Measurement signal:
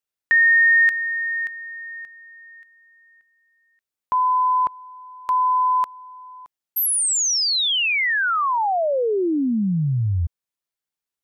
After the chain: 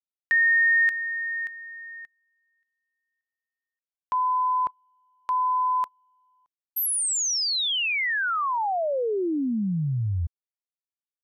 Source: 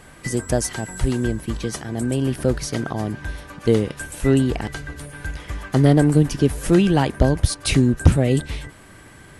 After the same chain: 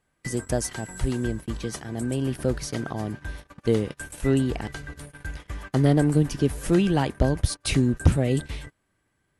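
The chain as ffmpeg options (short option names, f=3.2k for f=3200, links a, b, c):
-af "agate=range=-23dB:threshold=-35dB:ratio=3:release=30:detection=rms,volume=-5dB"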